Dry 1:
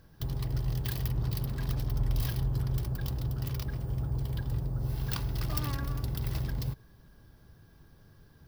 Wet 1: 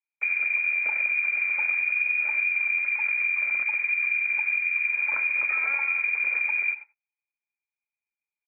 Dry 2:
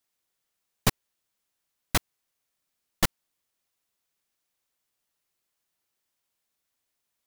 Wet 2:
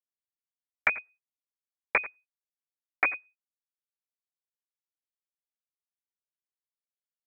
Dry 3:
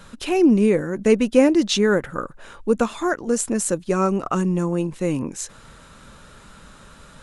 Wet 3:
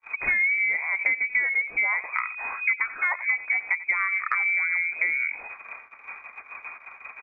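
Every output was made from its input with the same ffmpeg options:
-filter_complex "[0:a]lowpass=f=2.1k:t=q:w=0.5098,lowpass=f=2.1k:t=q:w=0.6013,lowpass=f=2.1k:t=q:w=0.9,lowpass=f=2.1k:t=q:w=2.563,afreqshift=-2500,agate=range=-47dB:threshold=-44dB:ratio=16:detection=peak,equalizer=f=140:t=o:w=1.1:g=-9,asplit=2[a][b];[b]aecho=0:1:87:0.112[c];[a][c]amix=inputs=2:normalize=0,acompressor=threshold=-30dB:ratio=12,volume=8.5dB"

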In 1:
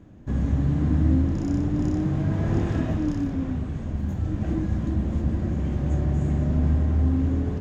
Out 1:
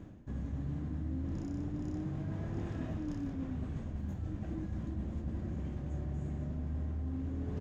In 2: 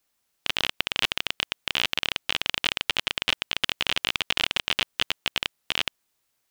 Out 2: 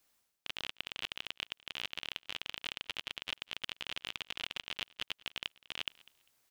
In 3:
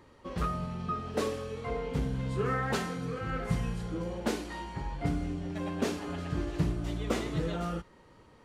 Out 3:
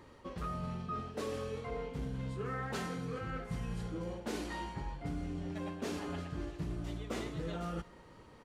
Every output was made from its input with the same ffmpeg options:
-af "areverse,acompressor=threshold=-37dB:ratio=6,areverse,aecho=1:1:199|398:0.0708|0.0156,volume=1dB"

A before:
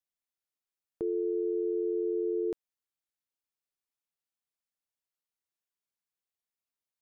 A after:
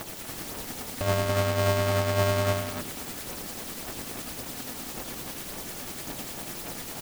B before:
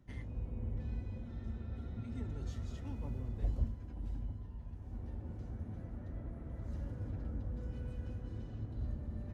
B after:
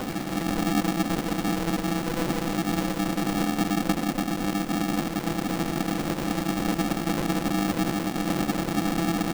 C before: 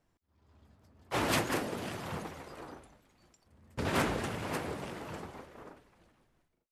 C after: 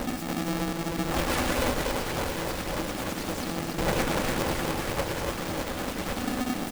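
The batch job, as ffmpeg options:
-filter_complex "[0:a]aeval=exprs='val(0)+0.5*0.0335*sgn(val(0))':c=same,bandreject=f=50:t=h:w=6,bandreject=f=100:t=h:w=6,bandreject=f=150:t=h:w=6,bandreject=f=200:t=h:w=6,bandreject=f=250:t=h:w=6,aecho=1:1:3.5:0.58,tremolo=f=10:d=0.44,aeval=exprs='0.2*(cos(1*acos(clip(val(0)/0.2,-1,1)))-cos(1*PI/2))+0.0316*(cos(2*acos(clip(val(0)/0.2,-1,1)))-cos(2*PI/2))':c=same,asplit=2[a][b];[b]acrusher=samples=32:mix=1:aa=0.000001,volume=-5dB[c];[a][c]amix=inputs=2:normalize=0,aphaser=in_gain=1:out_gain=1:delay=1.1:decay=0.62:speed=1.8:type=triangular,asplit=2[d][e];[e]aecho=0:1:122.4|242|285.7:0.398|0.316|0.631[f];[d][f]amix=inputs=2:normalize=0,aeval=exprs='0.501*(cos(1*acos(clip(val(0)/0.501,-1,1)))-cos(1*PI/2))+0.0398*(cos(5*acos(clip(val(0)/0.501,-1,1)))-cos(5*PI/2))':c=same,aeval=exprs='val(0)*sgn(sin(2*PI*250*n/s))':c=same,volume=-7dB"

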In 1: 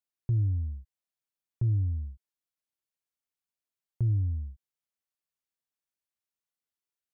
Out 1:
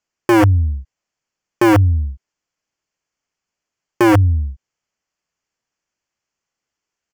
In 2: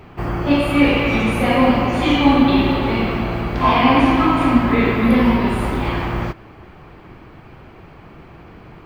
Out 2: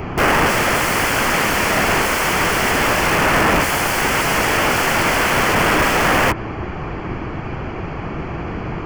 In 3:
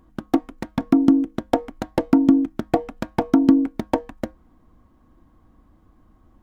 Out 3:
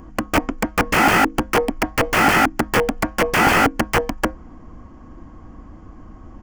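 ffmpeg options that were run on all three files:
-filter_complex "[0:a]asplit=2[a][b];[b]alimiter=limit=-12dB:level=0:latency=1:release=15,volume=2dB[c];[a][c]amix=inputs=2:normalize=0,aresample=16000,aresample=44100,aeval=exprs='(mod(5.96*val(0)+1,2)-1)/5.96':c=same,equalizer=f=3.8k:w=5.2:g=-14,acrossover=split=2800[d][e];[e]acompressor=threshold=-32dB:ratio=4:attack=1:release=60[f];[d][f]amix=inputs=2:normalize=0,volume=8dB"

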